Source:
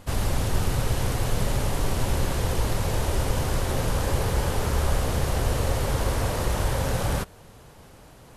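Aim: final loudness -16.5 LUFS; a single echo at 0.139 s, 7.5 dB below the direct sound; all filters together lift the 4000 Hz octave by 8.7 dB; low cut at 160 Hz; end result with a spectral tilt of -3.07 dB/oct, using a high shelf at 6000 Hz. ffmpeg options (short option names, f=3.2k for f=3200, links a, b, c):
-af "highpass=160,equalizer=f=4k:t=o:g=8.5,highshelf=f=6k:g=7,aecho=1:1:139:0.422,volume=9dB"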